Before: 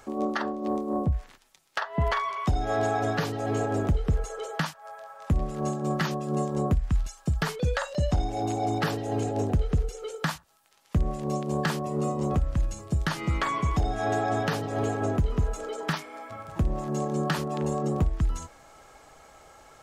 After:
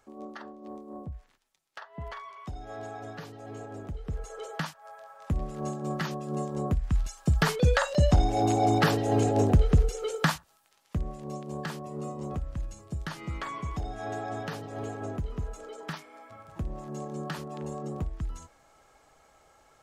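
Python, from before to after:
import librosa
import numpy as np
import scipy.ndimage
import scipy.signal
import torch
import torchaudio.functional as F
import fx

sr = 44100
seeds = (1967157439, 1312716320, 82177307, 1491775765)

y = fx.gain(x, sr, db=fx.line((3.88, -14.0), (4.39, -4.5), (6.61, -4.5), (7.48, 4.0), (10.23, 4.0), (11.14, -8.5)))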